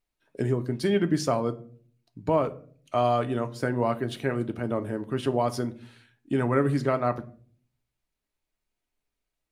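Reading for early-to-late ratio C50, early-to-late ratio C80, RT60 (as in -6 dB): 18.0 dB, 23.0 dB, 0.50 s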